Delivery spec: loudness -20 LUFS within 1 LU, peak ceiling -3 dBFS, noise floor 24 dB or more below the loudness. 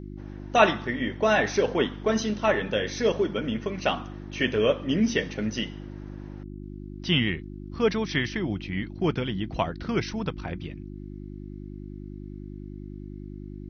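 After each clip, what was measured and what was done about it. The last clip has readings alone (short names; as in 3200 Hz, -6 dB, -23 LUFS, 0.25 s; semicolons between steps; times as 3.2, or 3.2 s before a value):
hum 50 Hz; harmonics up to 350 Hz; hum level -36 dBFS; loudness -26.5 LUFS; peak -6.0 dBFS; loudness target -20.0 LUFS
-> de-hum 50 Hz, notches 7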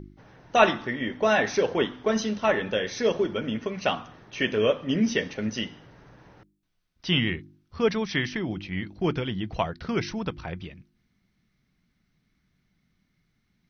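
hum none; loudness -26.5 LUFS; peak -6.0 dBFS; loudness target -20.0 LUFS
-> gain +6.5 dB; limiter -3 dBFS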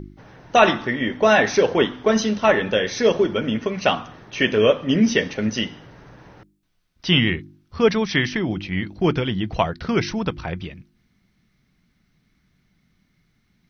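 loudness -20.5 LUFS; peak -3.0 dBFS; noise floor -66 dBFS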